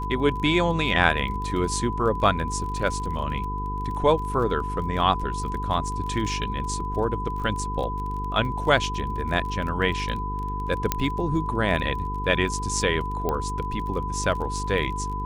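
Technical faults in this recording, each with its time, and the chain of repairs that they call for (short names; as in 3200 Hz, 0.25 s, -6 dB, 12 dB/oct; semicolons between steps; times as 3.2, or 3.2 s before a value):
buzz 50 Hz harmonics 9 -31 dBFS
crackle 29/s -32 dBFS
tone 1000 Hz -30 dBFS
10.92 pop -5 dBFS
13.29 pop -13 dBFS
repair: de-click; de-hum 50 Hz, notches 9; notch 1000 Hz, Q 30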